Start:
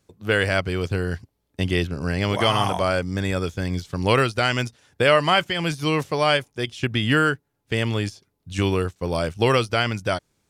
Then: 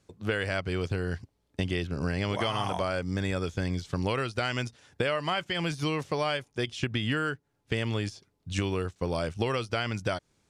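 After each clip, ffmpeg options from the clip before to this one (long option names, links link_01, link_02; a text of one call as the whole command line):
ffmpeg -i in.wav -af "acompressor=threshold=-26dB:ratio=6,lowpass=9300" out.wav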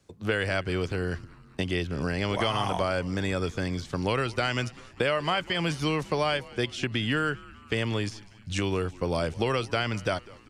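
ffmpeg -i in.wav -filter_complex "[0:a]acrossover=split=200|1100|1800[link_01][link_02][link_03][link_04];[link_01]alimiter=level_in=7.5dB:limit=-24dB:level=0:latency=1,volume=-7.5dB[link_05];[link_05][link_02][link_03][link_04]amix=inputs=4:normalize=0,asplit=6[link_06][link_07][link_08][link_09][link_10][link_11];[link_07]adelay=197,afreqshift=-110,volume=-21dB[link_12];[link_08]adelay=394,afreqshift=-220,volume=-25dB[link_13];[link_09]adelay=591,afreqshift=-330,volume=-29dB[link_14];[link_10]adelay=788,afreqshift=-440,volume=-33dB[link_15];[link_11]adelay=985,afreqshift=-550,volume=-37.1dB[link_16];[link_06][link_12][link_13][link_14][link_15][link_16]amix=inputs=6:normalize=0,volume=2.5dB" out.wav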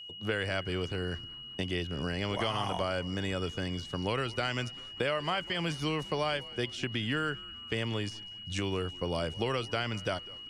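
ffmpeg -i in.wav -af "aeval=exprs='val(0)+0.0126*sin(2*PI*2900*n/s)':channel_layout=same,volume=-5dB" out.wav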